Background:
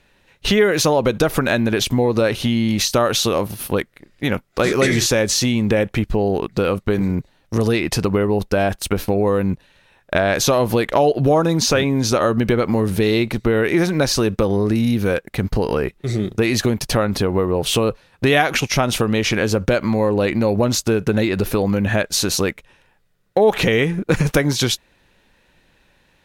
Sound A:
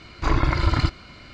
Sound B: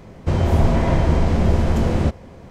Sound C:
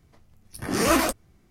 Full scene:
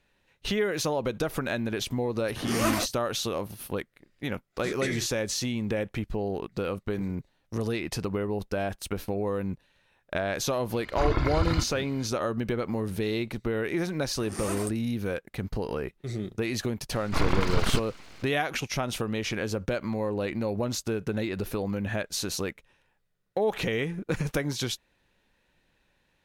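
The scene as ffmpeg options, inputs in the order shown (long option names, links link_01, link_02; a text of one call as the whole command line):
ffmpeg -i bed.wav -i cue0.wav -i cue1.wav -i cue2.wav -filter_complex "[3:a]asplit=2[link_01][link_02];[1:a]asplit=2[link_03][link_04];[0:a]volume=-12dB[link_05];[link_02]equalizer=frequency=8800:width_type=o:width=0.41:gain=11.5[link_06];[link_04]aeval=exprs='abs(val(0))':channel_layout=same[link_07];[link_01]atrim=end=1.5,asetpts=PTS-STARTPTS,volume=-6dB,afade=type=in:duration=0.004:curve=hsin,afade=type=out:start_time=1.496:duration=0.004:curve=hsin,adelay=1740[link_08];[link_03]atrim=end=1.33,asetpts=PTS-STARTPTS,volume=-6dB,afade=type=in:duration=0.004:curve=hsin,afade=type=out:start_time=1.326:duration=0.004:curve=hsin,adelay=473634S[link_09];[link_06]atrim=end=1.5,asetpts=PTS-STARTPTS,volume=-15.5dB,afade=type=in:duration=0.004:curve=hsin,afade=type=out:start_time=1.496:duration=0.004:curve=hsin,adelay=13580[link_10];[link_07]atrim=end=1.33,asetpts=PTS-STARTPTS,volume=-3dB,afade=type=in:duration=0.004:curve=hsin,afade=type=out:start_time=1.326:duration=0.004:curve=hsin,adelay=16900[link_11];[link_05][link_08][link_09][link_10][link_11]amix=inputs=5:normalize=0" out.wav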